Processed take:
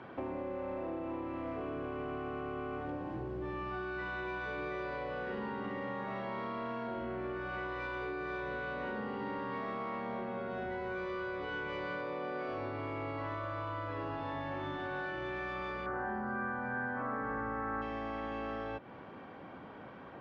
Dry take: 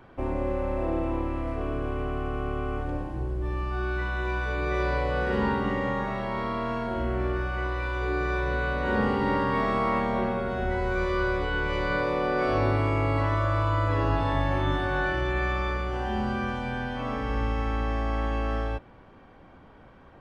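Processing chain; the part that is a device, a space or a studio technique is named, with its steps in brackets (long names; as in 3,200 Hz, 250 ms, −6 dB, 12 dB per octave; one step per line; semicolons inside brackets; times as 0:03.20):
AM radio (band-pass filter 150–3,900 Hz; downward compressor 10 to 1, threshold −39 dBFS, peak gain reduction 17.5 dB; soft clipping −33 dBFS, distortion −23 dB)
0:15.86–0:17.82: high shelf with overshoot 2,200 Hz −12.5 dB, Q 3
level +4 dB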